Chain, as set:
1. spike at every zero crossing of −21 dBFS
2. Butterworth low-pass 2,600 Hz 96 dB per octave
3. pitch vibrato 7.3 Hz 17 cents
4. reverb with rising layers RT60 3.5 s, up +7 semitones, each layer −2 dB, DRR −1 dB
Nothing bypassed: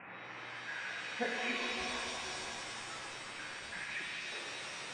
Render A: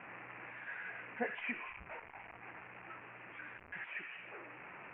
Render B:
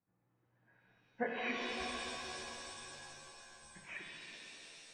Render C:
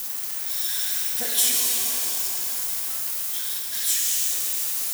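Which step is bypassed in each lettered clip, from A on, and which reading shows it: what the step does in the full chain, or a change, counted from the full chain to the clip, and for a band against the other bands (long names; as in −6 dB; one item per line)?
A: 4, 4 kHz band −14.5 dB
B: 1, change in crest factor +3.5 dB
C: 2, 8 kHz band +25.5 dB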